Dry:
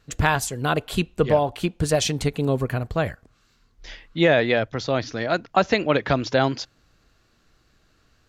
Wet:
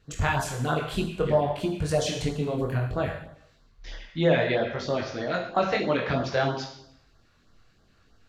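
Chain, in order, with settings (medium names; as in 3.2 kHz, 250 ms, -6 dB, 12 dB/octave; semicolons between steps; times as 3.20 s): treble shelf 5.3 kHz -8 dB; in parallel at -2 dB: compression, threshold -31 dBFS, peak gain reduction 17 dB; on the sum: Schroeder reverb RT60 0.74 s, combs from 33 ms, DRR 4 dB; chorus 0.6 Hz, delay 20 ms, depth 5.3 ms; LFO notch sine 3.1 Hz 240–2600 Hz; trim -2.5 dB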